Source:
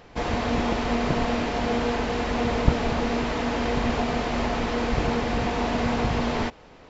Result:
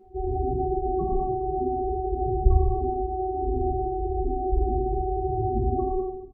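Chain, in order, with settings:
samples sorted by size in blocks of 128 samples
dynamic equaliser 270 Hz, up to +5 dB, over −45 dBFS, Q 3.8
spectral peaks only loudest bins 4
wrong playback speed 44.1 kHz file played as 48 kHz
double-tracking delay 29 ms −12.5 dB
on a send: repeating echo 414 ms, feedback 41%, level −22.5 dB
on the sum: reverb whose tail is shaped and stops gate 340 ms falling, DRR −7.5 dB

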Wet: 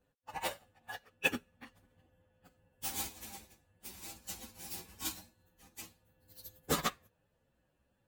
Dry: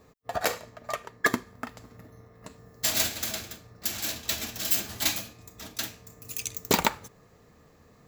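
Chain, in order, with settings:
partials spread apart or drawn together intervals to 122%
expander for the loud parts 1.5 to 1, over −53 dBFS
level −1.5 dB

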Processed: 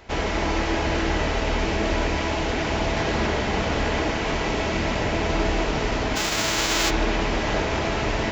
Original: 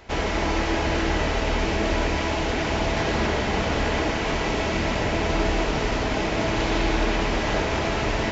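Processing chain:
0:06.15–0:06.89: spectral envelope flattened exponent 0.3

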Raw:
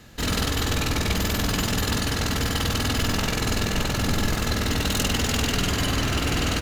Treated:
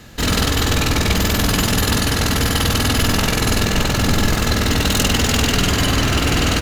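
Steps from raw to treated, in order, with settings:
0:01.39–0:03.64: parametric band 11,000 Hz +7 dB 0.2 octaves
level +7 dB

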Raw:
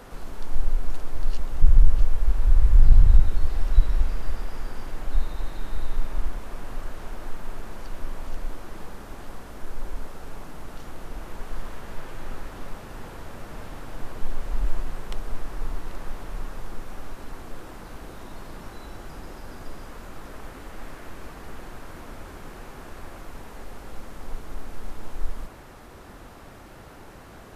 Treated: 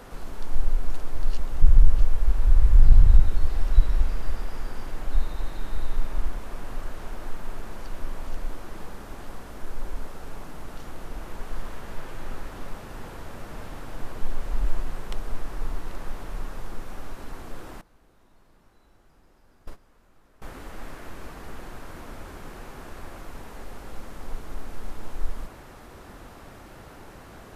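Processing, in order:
0:17.81–0:20.42: noise gate −29 dBFS, range −20 dB

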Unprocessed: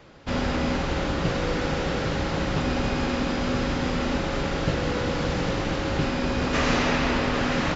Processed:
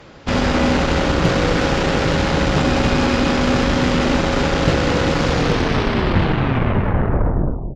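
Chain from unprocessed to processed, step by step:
turntable brake at the end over 2.51 s
single-tap delay 267 ms −9 dB
harmonic generator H 8 −23 dB, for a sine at −11 dBFS
level +8 dB

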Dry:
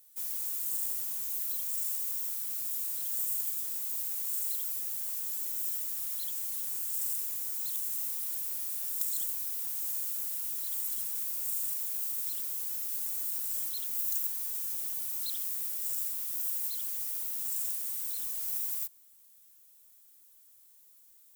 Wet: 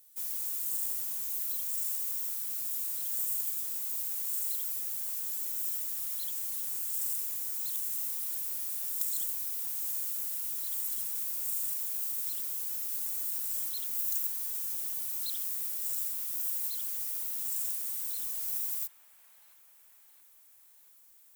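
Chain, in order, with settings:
delay with a band-pass on its return 677 ms, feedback 67%, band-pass 1,300 Hz, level −11 dB

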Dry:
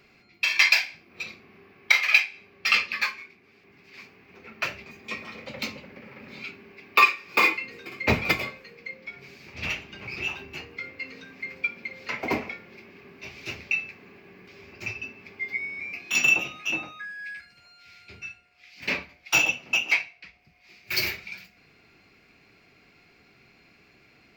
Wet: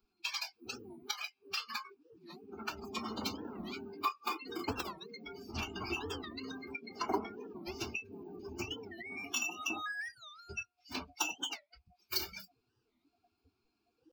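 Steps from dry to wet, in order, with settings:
spectral magnitudes quantised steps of 15 dB
downward compressor 12 to 1, threshold −33 dBFS, peak gain reduction 21 dB
flanger 0.24 Hz, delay 4.4 ms, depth 8.1 ms, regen +78%
noise reduction from a noise print of the clip's start 25 dB
phaser with its sweep stopped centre 540 Hz, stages 6
phase-vocoder stretch with locked phases 0.58×
wow of a warped record 45 rpm, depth 250 cents
level +13 dB

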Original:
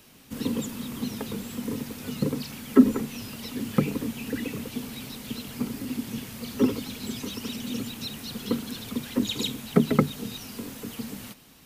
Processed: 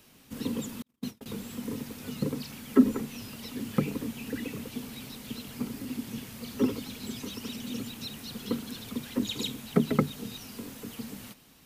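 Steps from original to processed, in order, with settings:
0:00.82–0:01.26: noise gate −30 dBFS, range −46 dB
level −4 dB

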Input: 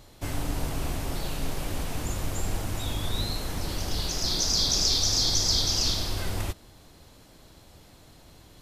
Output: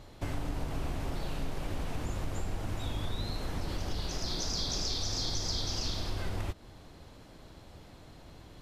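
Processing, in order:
low-pass filter 2,800 Hz 6 dB per octave
downward compressor 2.5 to 1, threshold −34 dBFS, peak gain reduction 8 dB
level +1.5 dB

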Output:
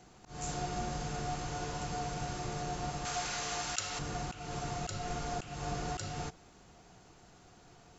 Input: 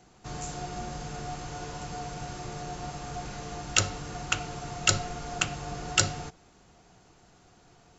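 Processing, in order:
volume swells 242 ms
0:03.05–0:03.99: tilt shelving filter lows −8.5 dB, about 630 Hz

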